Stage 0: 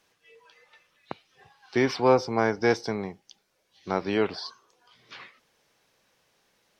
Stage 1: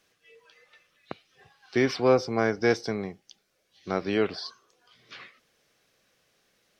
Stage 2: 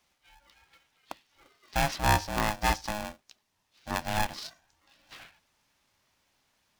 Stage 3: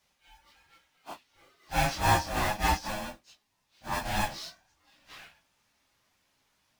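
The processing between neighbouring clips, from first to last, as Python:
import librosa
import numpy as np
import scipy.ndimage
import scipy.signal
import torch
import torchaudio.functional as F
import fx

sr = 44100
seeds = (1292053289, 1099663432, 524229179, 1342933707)

y1 = fx.peak_eq(x, sr, hz=910.0, db=-10.0, octaves=0.3)
y2 = y1 * np.sign(np.sin(2.0 * np.pi * 420.0 * np.arange(len(y1)) / sr))
y2 = F.gain(torch.from_numpy(y2), -3.5).numpy()
y3 = fx.phase_scramble(y2, sr, seeds[0], window_ms=100)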